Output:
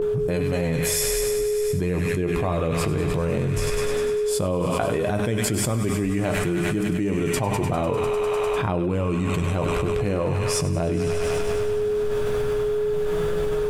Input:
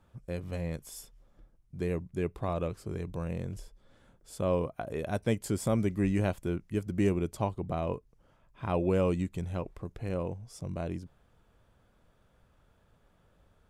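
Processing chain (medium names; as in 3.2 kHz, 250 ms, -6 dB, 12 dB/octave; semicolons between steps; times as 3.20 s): gate with hold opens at -58 dBFS; reverse; upward compressor, threshold -46 dBFS; reverse; whistle 420 Hz -44 dBFS; flange 0.15 Hz, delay 5.8 ms, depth 8.4 ms, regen +40%; on a send: feedback echo behind a high-pass 100 ms, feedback 81%, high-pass 1.4 kHz, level -6.5 dB; on the sum: simulated room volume 260 m³, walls furnished, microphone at 0.49 m; level flattener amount 100%; trim +3 dB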